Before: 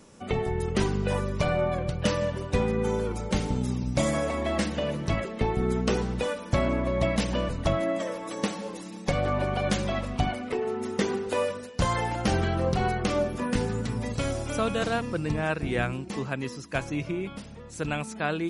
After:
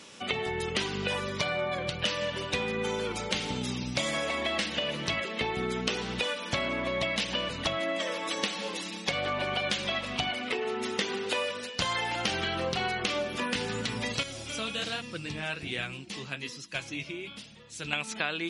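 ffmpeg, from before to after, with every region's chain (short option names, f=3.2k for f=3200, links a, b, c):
-filter_complex "[0:a]asettb=1/sr,asplit=3[a][b][c];[a]atrim=end=1.284[d];[b]atrim=start=1.28:end=1.88,asetpts=PTS-STARTPTS,afade=t=in:d=0.004:c=qsin,afade=t=out:st=0.596:d=0.004:c=qsin,highpass=63,bandreject=f=2.7k:w=6.9[e];[c]atrim=start=1.876[f];[d][e]acrossfade=d=0.004:c1=hsin:c2=qsin[g];[g][f]acrossfade=d=0.004:c1=qsin:c2=hsin,asettb=1/sr,asplit=3[h][i][j];[h]atrim=end=14.234[k];[i]atrim=start=14.23:end=17.93,asetpts=PTS-STARTPTS,afade=t=in:d=0.004:c=qsin,afade=t=out:st=3.696:d=0.004:c=qsin,equalizer=f=1k:w=0.31:g=-8.5,flanger=delay=5.4:depth=8.8:regen=-36:speed=1.2:shape=sinusoidal[l];[j]atrim=start=17.926[m];[k][l]acrossfade=d=0.004:c1=hsin:c2=qsin[n];[n][m]acrossfade=d=0.004:c1=qsin:c2=hsin,highpass=f=210:p=1,equalizer=f=3.2k:w=0.69:g=15,acompressor=threshold=-28dB:ratio=4"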